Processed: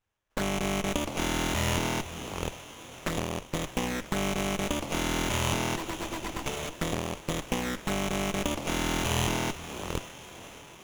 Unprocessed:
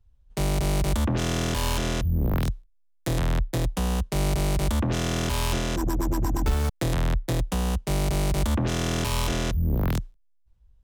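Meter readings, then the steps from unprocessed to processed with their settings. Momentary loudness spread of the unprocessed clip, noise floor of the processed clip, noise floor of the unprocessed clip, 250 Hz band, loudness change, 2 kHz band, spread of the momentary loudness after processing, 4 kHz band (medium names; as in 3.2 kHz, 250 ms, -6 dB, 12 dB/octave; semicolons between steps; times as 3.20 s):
3 LU, -49 dBFS, -62 dBFS, -3.5 dB, -4.5 dB, +1.5 dB, 10 LU, -0.5 dB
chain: hum notches 60/120/180/240 Hz; in parallel at -11.5 dB: integer overflow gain 29.5 dB; on the sum: touch-sensitive flanger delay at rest 10.9 ms, full sweep at -23 dBFS; frequency weighting ITU-R 468; echo that smears into a reverb 581 ms, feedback 57%, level -13 dB; sliding maximum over 9 samples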